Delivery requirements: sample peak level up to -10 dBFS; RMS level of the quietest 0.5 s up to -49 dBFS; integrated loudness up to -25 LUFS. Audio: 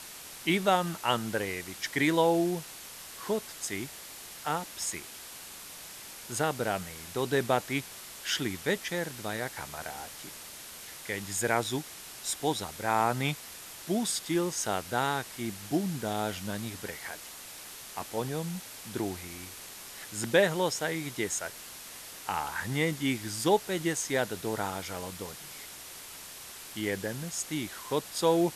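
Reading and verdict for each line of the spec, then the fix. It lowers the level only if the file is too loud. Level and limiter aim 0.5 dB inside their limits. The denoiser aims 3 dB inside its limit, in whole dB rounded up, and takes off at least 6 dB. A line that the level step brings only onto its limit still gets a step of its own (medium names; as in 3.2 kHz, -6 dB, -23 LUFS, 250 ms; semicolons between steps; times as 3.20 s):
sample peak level -9.0 dBFS: fail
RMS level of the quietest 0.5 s -46 dBFS: fail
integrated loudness -31.5 LUFS: pass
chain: noise reduction 6 dB, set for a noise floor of -46 dBFS; peak limiter -10.5 dBFS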